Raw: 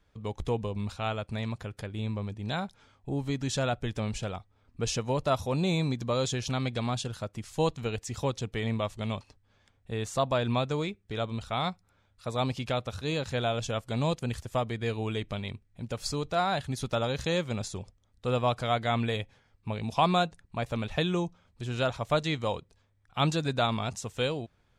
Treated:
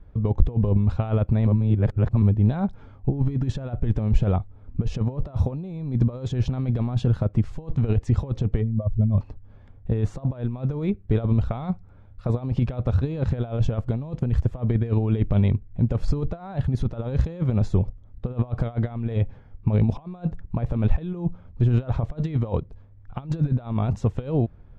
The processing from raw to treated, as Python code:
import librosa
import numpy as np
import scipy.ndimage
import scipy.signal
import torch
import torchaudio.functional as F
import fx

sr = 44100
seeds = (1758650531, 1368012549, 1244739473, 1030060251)

y = fx.spec_expand(x, sr, power=2.1, at=(8.6, 9.17), fade=0.02)
y = fx.edit(y, sr, fx.reverse_span(start_s=1.47, length_s=0.75), tone=tone)
y = fx.over_compress(y, sr, threshold_db=-34.0, ratio=-0.5)
y = fx.lowpass(y, sr, hz=1300.0, slope=6)
y = fx.tilt_eq(y, sr, slope=-3.0)
y = y * 10.0 ** (5.0 / 20.0)